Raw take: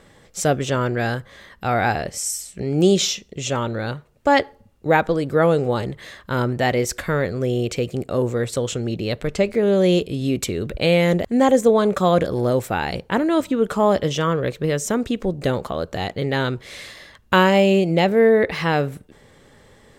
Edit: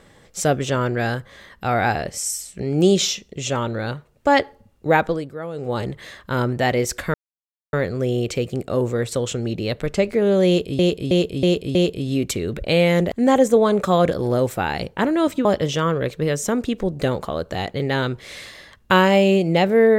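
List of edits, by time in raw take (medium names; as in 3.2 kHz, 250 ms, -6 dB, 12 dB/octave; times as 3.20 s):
5.04–5.83 s: dip -14.5 dB, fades 0.30 s
7.14 s: insert silence 0.59 s
9.88–10.20 s: loop, 5 plays
13.58–13.87 s: delete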